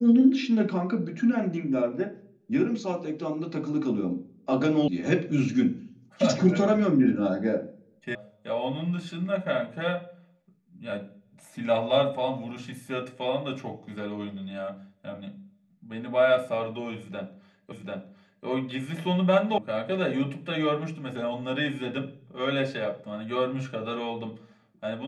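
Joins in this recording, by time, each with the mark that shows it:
4.88 sound cut off
8.15 sound cut off
17.72 repeat of the last 0.74 s
19.58 sound cut off

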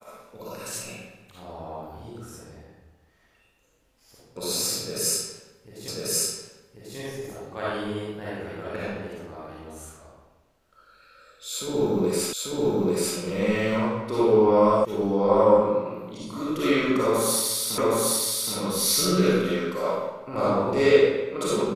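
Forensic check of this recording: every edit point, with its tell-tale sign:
5.88 repeat of the last 1.09 s
12.33 repeat of the last 0.84 s
14.85 sound cut off
17.78 repeat of the last 0.77 s

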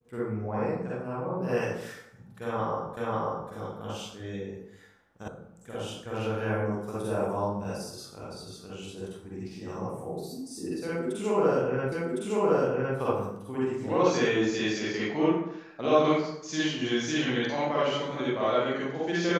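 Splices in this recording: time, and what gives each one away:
2.97 repeat of the last 0.54 s
5.28 sound cut off
11.92 repeat of the last 1.06 s

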